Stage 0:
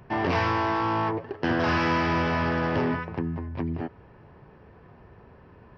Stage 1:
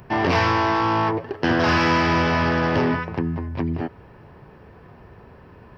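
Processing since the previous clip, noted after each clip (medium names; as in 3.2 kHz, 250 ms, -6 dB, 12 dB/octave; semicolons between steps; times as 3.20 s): treble shelf 5.6 kHz +9.5 dB; trim +5 dB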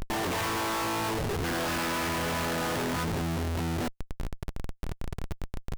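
compression, threshold -24 dBFS, peak gain reduction 8.5 dB; Schmitt trigger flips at -37.5 dBFS; trim -1 dB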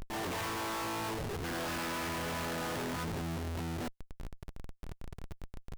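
peak limiter -28.5 dBFS, peak gain reduction 4.5 dB; trim -6.5 dB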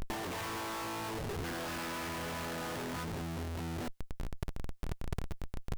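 compressor with a negative ratio -43 dBFS, ratio -1; trim +5.5 dB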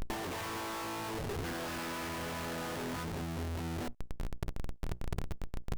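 hum notches 60/120/180/240/300/360 Hz; hysteresis with a dead band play -46 dBFS; trim +1 dB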